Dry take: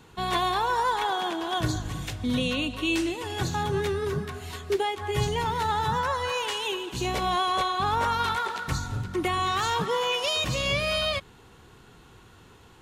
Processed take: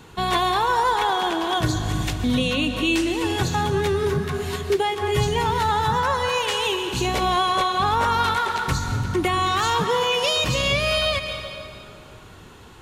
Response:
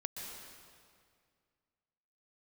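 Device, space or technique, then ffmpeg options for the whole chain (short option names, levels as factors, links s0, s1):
ducked reverb: -filter_complex "[0:a]asplit=3[s0][s1][s2];[1:a]atrim=start_sample=2205[s3];[s1][s3]afir=irnorm=-1:irlink=0[s4];[s2]apad=whole_len=565109[s5];[s4][s5]sidechaincompress=threshold=0.0398:ratio=8:attack=16:release=325,volume=1.06[s6];[s0][s6]amix=inputs=2:normalize=0,volume=1.26"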